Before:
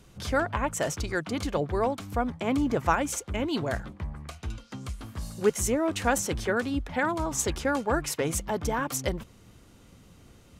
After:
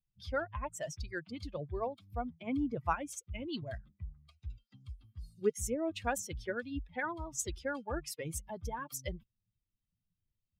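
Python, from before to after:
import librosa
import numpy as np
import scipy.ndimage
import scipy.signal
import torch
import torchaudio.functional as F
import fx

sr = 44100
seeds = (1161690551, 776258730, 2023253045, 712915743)

y = fx.bin_expand(x, sr, power=2.0)
y = y * 10.0 ** (-5.5 / 20.0)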